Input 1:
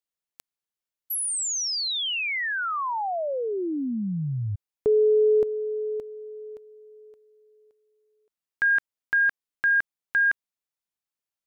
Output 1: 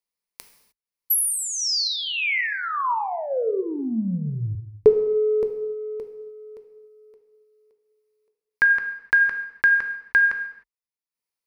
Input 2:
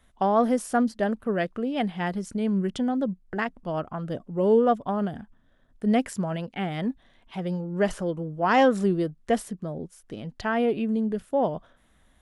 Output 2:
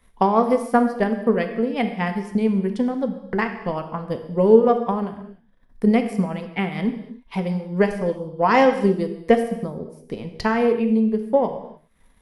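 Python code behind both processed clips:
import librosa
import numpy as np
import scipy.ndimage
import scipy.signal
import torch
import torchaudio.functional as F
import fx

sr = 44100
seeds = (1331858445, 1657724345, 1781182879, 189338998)

y = fx.transient(x, sr, attack_db=7, sustain_db=-9)
y = fx.ripple_eq(y, sr, per_octave=0.88, db=7)
y = fx.rev_gated(y, sr, seeds[0], gate_ms=330, shape='falling', drr_db=6.0)
y = y * librosa.db_to_amplitude(1.0)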